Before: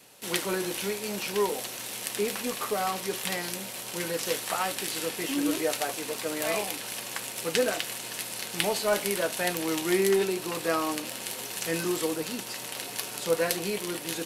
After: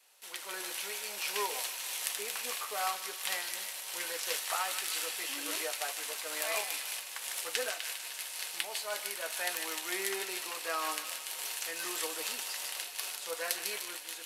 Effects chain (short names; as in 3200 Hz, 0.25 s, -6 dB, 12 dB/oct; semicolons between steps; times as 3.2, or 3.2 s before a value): HPF 790 Hz 12 dB/oct; AGC gain up to 10 dB; on a send: thin delay 0.151 s, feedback 59%, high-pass 1700 Hz, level -6 dB; on the sum: noise-modulated level, depth 60%; gain -8 dB